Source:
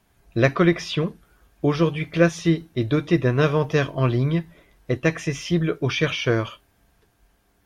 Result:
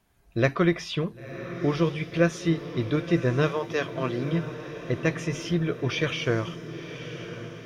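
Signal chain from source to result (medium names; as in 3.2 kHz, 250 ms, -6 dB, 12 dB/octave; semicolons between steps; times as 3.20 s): 3.48–4.31 s: high-pass 480 Hz -> 210 Hz 12 dB/octave; echo that smears into a reverb 1006 ms, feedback 59%, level -11.5 dB; trim -4.5 dB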